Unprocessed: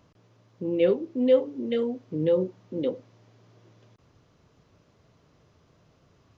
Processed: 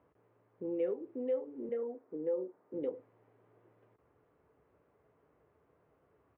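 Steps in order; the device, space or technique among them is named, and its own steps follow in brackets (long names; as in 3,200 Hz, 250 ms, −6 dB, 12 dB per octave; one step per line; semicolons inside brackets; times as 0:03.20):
bass amplifier (downward compressor 4 to 1, threshold −26 dBFS, peak gain reduction 10.5 dB; loudspeaker in its box 63–2,100 Hz, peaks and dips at 88 Hz −9 dB, 140 Hz −10 dB, 210 Hz −7 dB, 440 Hz +6 dB, 830 Hz +3 dB)
0:01.69–0:02.74: three-way crossover with the lows and the highs turned down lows −23 dB, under 200 Hz, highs −15 dB, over 2,000 Hz
double-tracking delay 14 ms −12 dB
level −8 dB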